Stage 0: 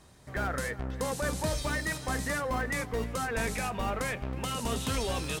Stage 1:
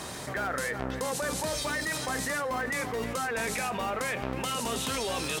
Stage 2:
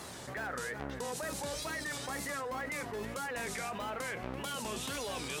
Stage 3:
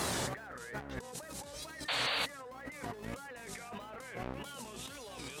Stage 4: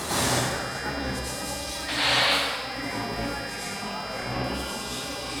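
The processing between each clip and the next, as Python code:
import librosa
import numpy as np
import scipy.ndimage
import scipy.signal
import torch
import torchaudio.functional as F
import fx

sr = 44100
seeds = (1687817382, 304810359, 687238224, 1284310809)

y1 = fx.highpass(x, sr, hz=310.0, slope=6)
y1 = fx.env_flatten(y1, sr, amount_pct=70)
y2 = fx.wow_flutter(y1, sr, seeds[0], rate_hz=2.1, depth_cents=140.0)
y2 = y2 * librosa.db_to_amplitude(-7.0)
y3 = fx.over_compress(y2, sr, threshold_db=-45.0, ratio=-0.5)
y3 = fx.spec_paint(y3, sr, seeds[1], shape='noise', start_s=1.88, length_s=0.38, low_hz=430.0, high_hz=4700.0, level_db=-37.0)
y3 = y3 * librosa.db_to_amplitude(3.5)
y4 = fx.dmg_buzz(y3, sr, base_hz=400.0, harmonics=14, level_db=-51.0, tilt_db=0, odd_only=False)
y4 = fx.rev_plate(y4, sr, seeds[2], rt60_s=1.3, hf_ratio=0.85, predelay_ms=80, drr_db=-9.0)
y4 = y4 * librosa.db_to_amplitude(2.5)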